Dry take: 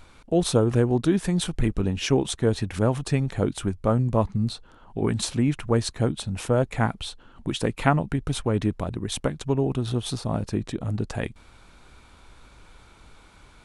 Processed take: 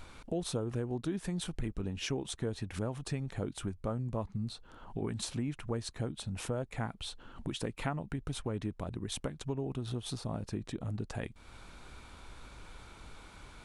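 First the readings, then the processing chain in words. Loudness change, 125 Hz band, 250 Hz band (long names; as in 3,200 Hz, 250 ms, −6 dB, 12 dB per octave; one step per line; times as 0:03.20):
−12.5 dB, −12.5 dB, −13.0 dB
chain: downward compressor 2.5 to 1, threshold −39 dBFS, peak gain reduction 16.5 dB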